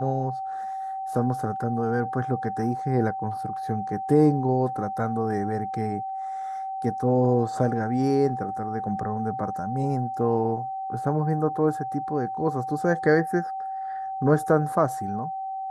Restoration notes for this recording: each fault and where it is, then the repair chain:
whine 770 Hz -29 dBFS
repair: band-stop 770 Hz, Q 30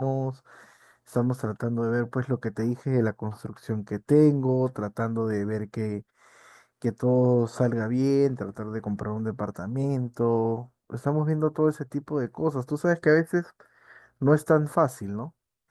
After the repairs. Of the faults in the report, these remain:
nothing left

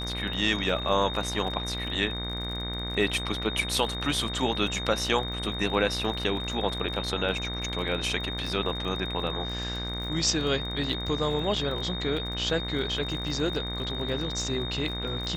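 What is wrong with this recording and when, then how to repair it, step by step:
buzz 60 Hz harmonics 39 -35 dBFS
crackle 36 per s -35 dBFS
whine 3.7 kHz -34 dBFS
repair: de-click; de-hum 60 Hz, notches 39; band-stop 3.7 kHz, Q 30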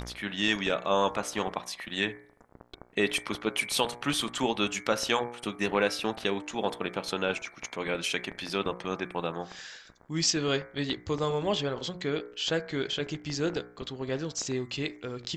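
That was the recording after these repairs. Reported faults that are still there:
nothing left

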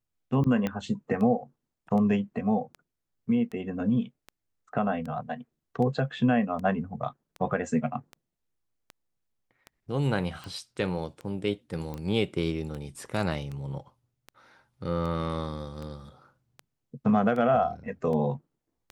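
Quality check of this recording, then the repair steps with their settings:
tick 78 rpm -26 dBFS
0.67 s: pop -16 dBFS
11.94 s: pop -24 dBFS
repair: de-click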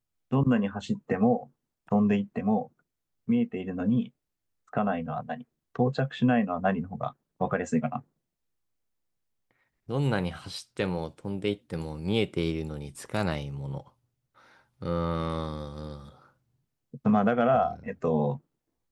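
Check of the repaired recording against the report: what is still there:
0.67 s: pop

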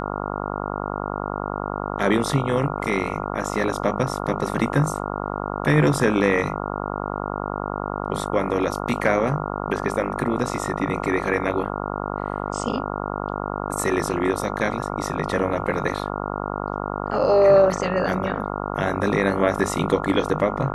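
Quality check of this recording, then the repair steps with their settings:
buzz 50 Hz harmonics 28 -28 dBFS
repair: de-hum 50 Hz, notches 28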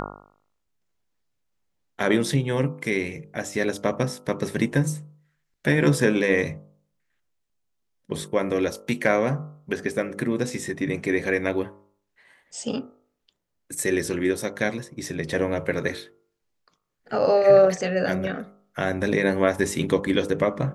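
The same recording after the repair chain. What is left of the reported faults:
nothing left

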